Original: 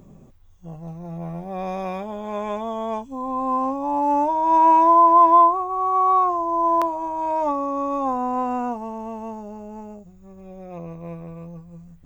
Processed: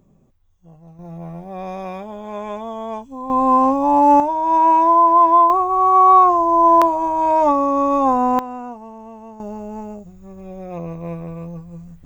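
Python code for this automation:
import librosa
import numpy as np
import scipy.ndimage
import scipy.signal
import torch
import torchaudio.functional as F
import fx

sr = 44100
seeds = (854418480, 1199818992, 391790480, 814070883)

y = fx.gain(x, sr, db=fx.steps((0.0, -8.5), (0.99, -1.0), (3.3, 8.5), (4.2, 1.0), (5.5, 7.5), (8.39, -5.5), (9.4, 6.0)))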